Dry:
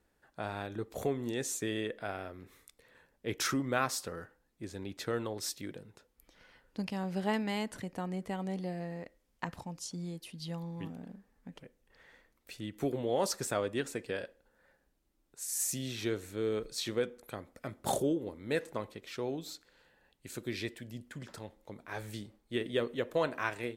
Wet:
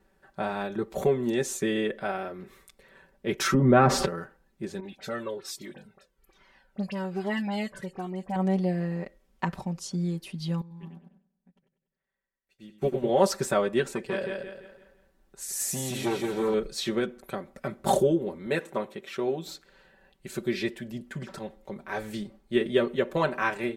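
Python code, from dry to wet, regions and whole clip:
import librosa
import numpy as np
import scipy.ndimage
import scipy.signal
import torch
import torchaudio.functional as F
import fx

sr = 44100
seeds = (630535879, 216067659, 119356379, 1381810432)

y = fx.chain(x, sr, fx.lowpass(hz=1100.0, slope=6),
    fx.low_shelf(hz=380.0, db=8.5),
    fx.env_flatten(amount_pct=70), at=(3.54, 4.06))
y = fx.chain(y, sr, fx.low_shelf(hz=130.0, db=-8.0),
    fx.dispersion(late='highs', ms=45.0, hz=2400.0),
    fx.comb_cascade(direction='falling', hz=1.2), at=(4.8, 8.36))
y = fx.chain(y, sr, fx.echo_feedback(ms=96, feedback_pct=58, wet_db=-5),
    fx.upward_expand(threshold_db=-52.0, expansion=2.5), at=(10.61, 13.09))
y = fx.chain(y, sr, fx.echo_feedback(ms=170, feedback_pct=38, wet_db=-4),
    fx.transformer_sat(knee_hz=880.0), at=(13.94, 16.54))
y = fx.chain(y, sr, fx.highpass(hz=200.0, slope=6),
    fx.peak_eq(hz=4800.0, db=-8.5, octaves=0.23),
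    fx.notch(hz=6400.0, q=28.0), at=(18.46, 19.46))
y = fx.high_shelf(y, sr, hz=3100.0, db=-7.5)
y = y + 0.86 * np.pad(y, (int(5.2 * sr / 1000.0), 0))[:len(y)]
y = y * 10.0 ** (6.5 / 20.0)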